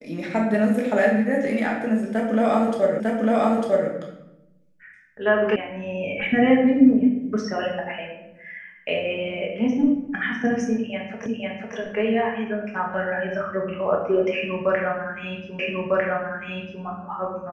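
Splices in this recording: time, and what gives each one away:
3.00 s: repeat of the last 0.9 s
5.56 s: sound stops dead
11.26 s: repeat of the last 0.5 s
15.59 s: repeat of the last 1.25 s

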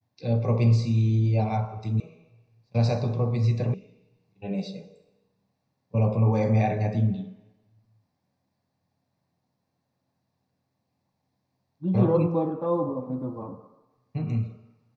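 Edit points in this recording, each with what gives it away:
2.00 s: sound stops dead
3.74 s: sound stops dead

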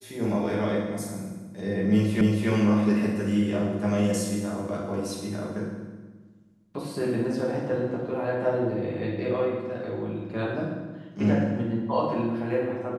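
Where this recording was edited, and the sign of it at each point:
2.21 s: repeat of the last 0.28 s

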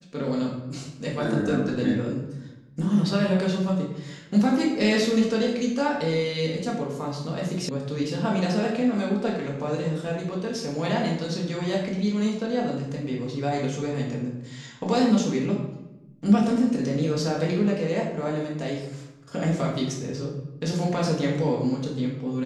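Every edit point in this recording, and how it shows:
7.69 s: sound stops dead

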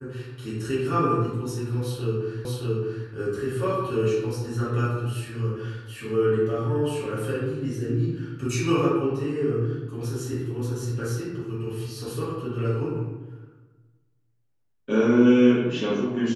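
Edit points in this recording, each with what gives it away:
2.45 s: repeat of the last 0.62 s

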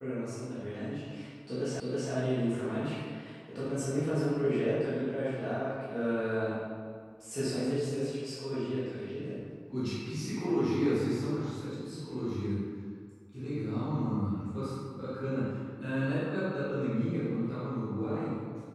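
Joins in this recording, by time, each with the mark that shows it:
1.80 s: repeat of the last 0.32 s

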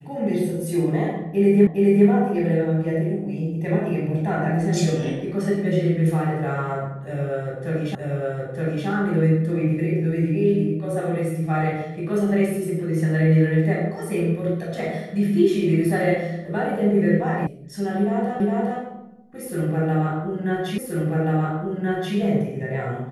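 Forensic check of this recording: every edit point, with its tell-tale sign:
1.67 s: repeat of the last 0.41 s
7.95 s: repeat of the last 0.92 s
17.47 s: sound stops dead
18.40 s: repeat of the last 0.41 s
20.78 s: repeat of the last 1.38 s

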